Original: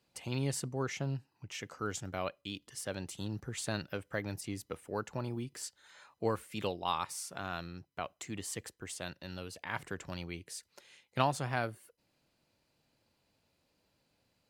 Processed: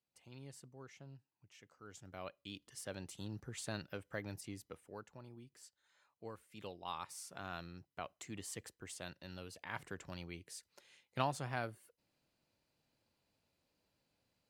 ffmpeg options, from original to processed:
-af "volume=1.58,afade=t=in:st=1.84:d=0.75:silence=0.237137,afade=t=out:st=4.36:d=0.79:silence=0.316228,afade=t=in:st=6.42:d=1.1:silence=0.298538"

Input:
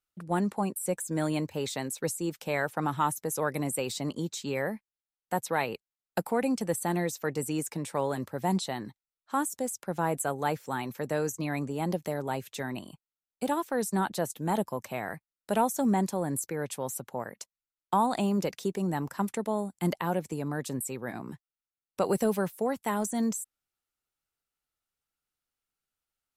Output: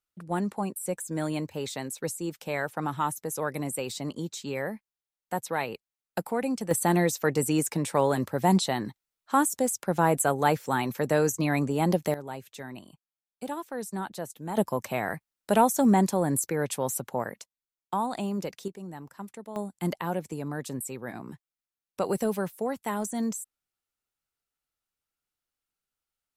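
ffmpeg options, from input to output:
-af "asetnsamples=n=441:p=0,asendcmd='6.71 volume volume 6dB;12.14 volume volume -5.5dB;14.57 volume volume 5dB;17.41 volume volume -3.5dB;18.68 volume volume -10.5dB;19.56 volume volume -1dB',volume=0.891"

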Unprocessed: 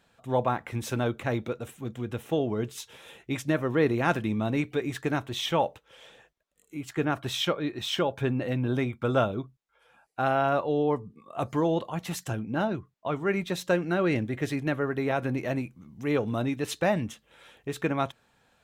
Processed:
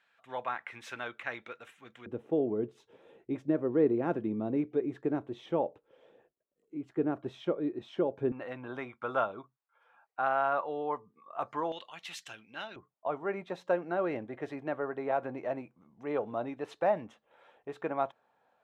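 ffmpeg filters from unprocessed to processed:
-af "asetnsamples=n=441:p=0,asendcmd='2.06 bandpass f 370;8.32 bandpass f 1100;11.72 bandpass f 3000;12.76 bandpass f 740',bandpass=f=1900:t=q:w=1.4:csg=0"

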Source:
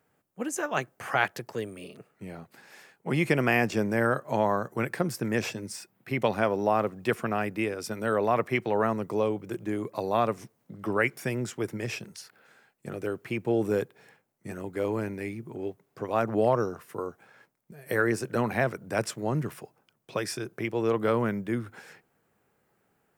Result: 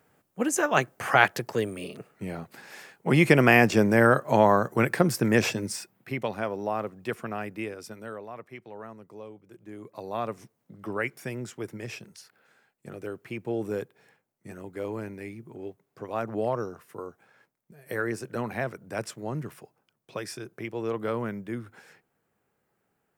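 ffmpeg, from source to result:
-af "volume=7.94,afade=t=out:st=5.65:d=0.58:silence=0.281838,afade=t=out:st=7.7:d=0.55:silence=0.266073,afade=t=in:st=9.53:d=0.87:silence=0.251189"

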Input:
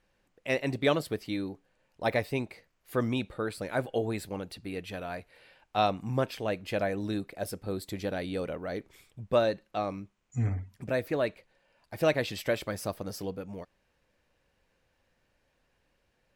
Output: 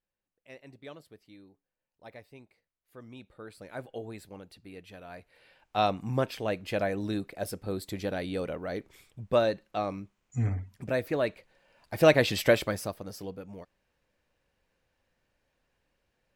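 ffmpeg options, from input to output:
-af "volume=2.37,afade=t=in:st=3.02:d=0.74:silence=0.298538,afade=t=in:st=5.02:d=0.87:silence=0.316228,afade=t=in:st=11.22:d=1.25:silence=0.446684,afade=t=out:st=12.47:d=0.47:silence=0.281838"

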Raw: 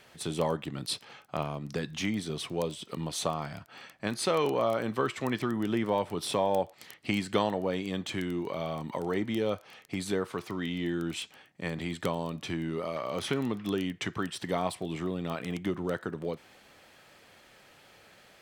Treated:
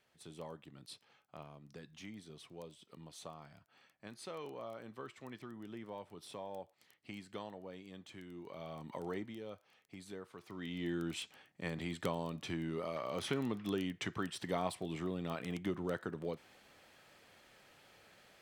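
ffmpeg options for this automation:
-af "volume=1.33,afade=t=in:st=8.27:d=0.81:silence=0.334965,afade=t=out:st=9.08:d=0.28:silence=0.375837,afade=t=in:st=10.39:d=0.53:silence=0.266073"

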